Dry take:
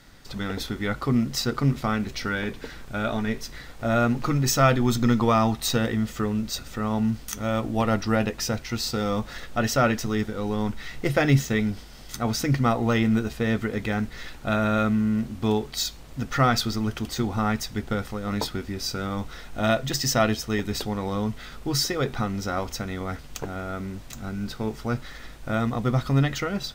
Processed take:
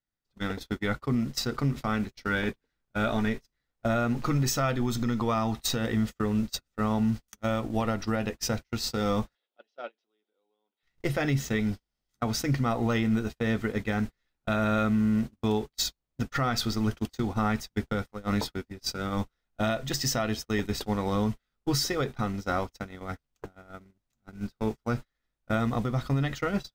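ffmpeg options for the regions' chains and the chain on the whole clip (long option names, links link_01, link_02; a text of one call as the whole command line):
ffmpeg -i in.wav -filter_complex "[0:a]asettb=1/sr,asplit=3[link_01][link_02][link_03];[link_01]atrim=end=9.354[link_04];[link_02]atrim=start=9.35:end=10.83,asetpts=PTS-STARTPTS,afade=type=in:duration=0.004:curve=qsin,afade=type=out:start_time=1.476:duration=0.004:curve=qsin,acompressor=threshold=-31dB:ratio=2:attack=3.2:release=140:knee=1:detection=peak,highpass=frequency=350:width=0.5412,highpass=frequency=350:width=1.3066,equalizer=frequency=1200:width_type=q:width=4:gain=-6,equalizer=frequency=1800:width_type=q:width=4:gain=-8,equalizer=frequency=3400:width_type=q:width=4:gain=6,lowpass=frequency=4400:width=0.5412,lowpass=frequency=4400:width=1.3066[link_05];[link_03]atrim=start=10.826[link_06];[link_04][link_05]acrossfade=duration=0.004:curve1=hsin:curve2=qsin[link_07];[link_07][link_06]acrossfade=duration=0.004:curve1=qsin:curve2=hsin,agate=range=-43dB:threshold=-28dB:ratio=16:detection=peak,alimiter=limit=-19.5dB:level=0:latency=1:release=335,volume=2dB" out.wav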